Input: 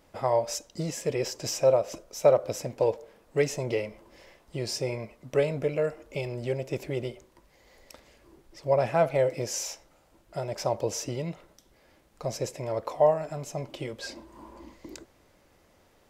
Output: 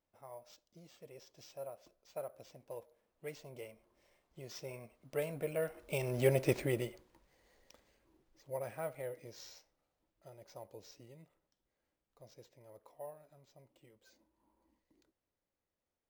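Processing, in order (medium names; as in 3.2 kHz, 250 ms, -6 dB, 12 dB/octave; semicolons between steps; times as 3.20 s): Doppler pass-by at 6.38 s, 13 m/s, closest 3.1 m; dynamic bell 1.7 kHz, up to +4 dB, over -58 dBFS, Q 0.94; careless resampling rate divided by 4×, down none, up hold; trim +1.5 dB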